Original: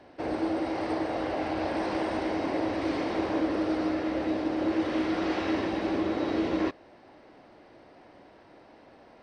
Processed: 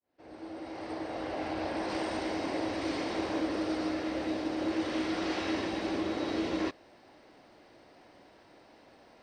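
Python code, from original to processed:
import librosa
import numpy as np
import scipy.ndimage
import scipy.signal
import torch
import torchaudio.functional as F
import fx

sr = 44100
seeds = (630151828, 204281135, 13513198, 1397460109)

y = fx.fade_in_head(x, sr, length_s=1.48)
y = fx.high_shelf(y, sr, hz=3800.0, db=fx.steps((0.0, 5.5), (1.88, 12.0)))
y = F.gain(torch.from_numpy(y), -4.5).numpy()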